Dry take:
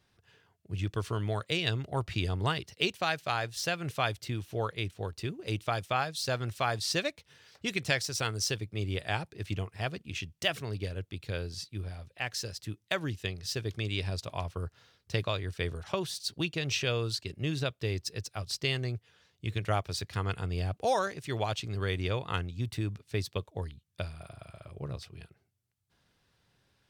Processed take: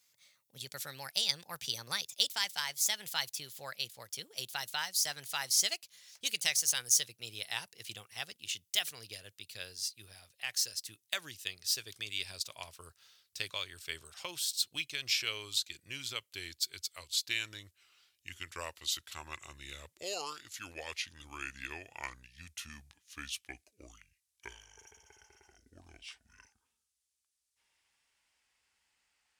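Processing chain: gliding tape speed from 131% -> 52%; pre-emphasis filter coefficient 0.97; trim +7 dB

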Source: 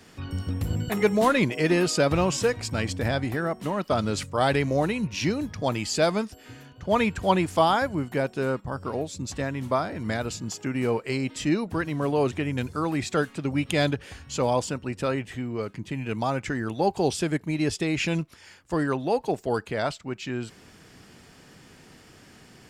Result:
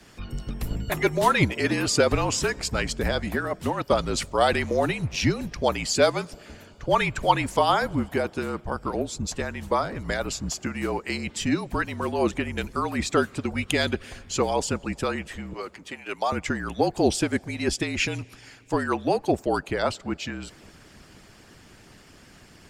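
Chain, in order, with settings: 15.53–16.32 s: high-pass 490 Hz 12 dB/octave; on a send at -22 dB: reverberation RT60 3.8 s, pre-delay 38 ms; on the sum: frequency shift -45 Hz; harmonic-percussive split harmonic -11 dB; trim +4.5 dB

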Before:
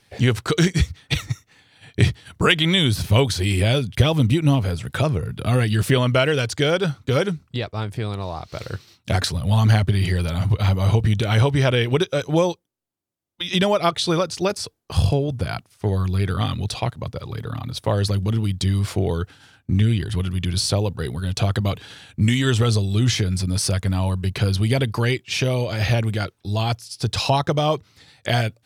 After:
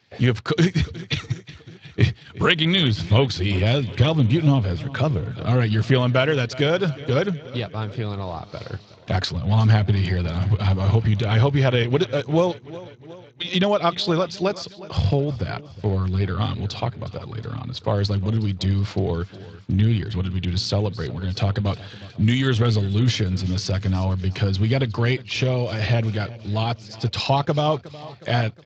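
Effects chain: feedback delay 364 ms, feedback 58%, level -18 dB; trim -1 dB; Speex 21 kbps 16 kHz

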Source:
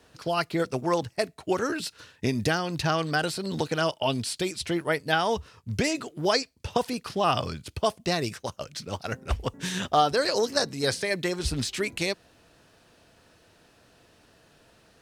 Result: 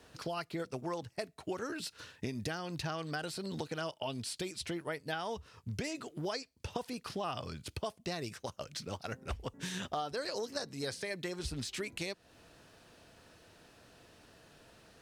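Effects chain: compression 3:1, threshold -38 dBFS, peak gain reduction 16 dB; trim -1 dB

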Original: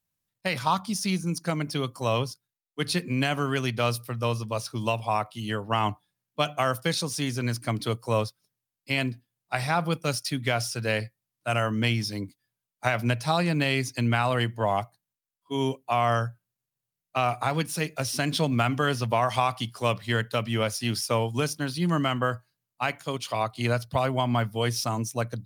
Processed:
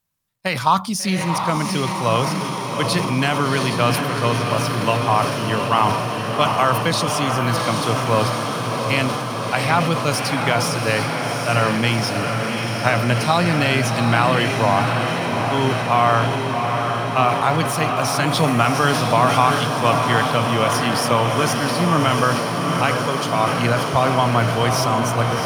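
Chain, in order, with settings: peaking EQ 1.1 kHz +4.5 dB 0.83 oct; echo that smears into a reverb 734 ms, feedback 78%, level -5 dB; transient shaper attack 0 dB, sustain +5 dB; trim +5 dB

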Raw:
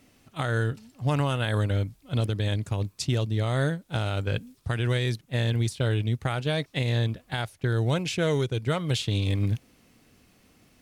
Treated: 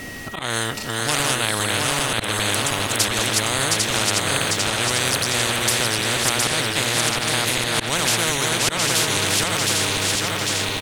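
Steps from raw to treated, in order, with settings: backward echo that repeats 399 ms, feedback 62%, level -3 dB; slow attack 105 ms; whistle 1.9 kHz -43 dBFS; on a send: delay 715 ms -5.5 dB; on the sum: slow attack 162 ms; spectrum-flattening compressor 4:1; trim +7 dB

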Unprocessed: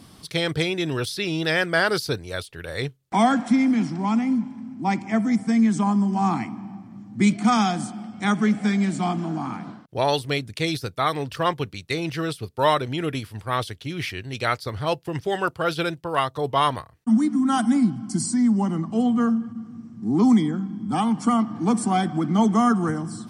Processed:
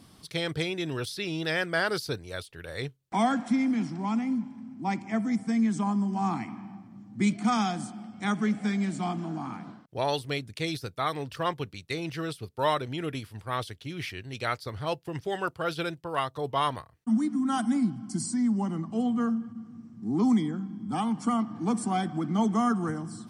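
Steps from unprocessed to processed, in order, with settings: 6.47–6.87 s: peaking EQ 2 kHz +9 dB -> +2 dB 1.9 oct; trim -6.5 dB

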